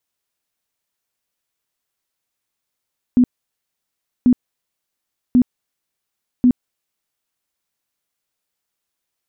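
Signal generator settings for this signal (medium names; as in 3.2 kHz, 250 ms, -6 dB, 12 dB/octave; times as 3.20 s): tone bursts 248 Hz, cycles 17, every 1.09 s, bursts 4, -8 dBFS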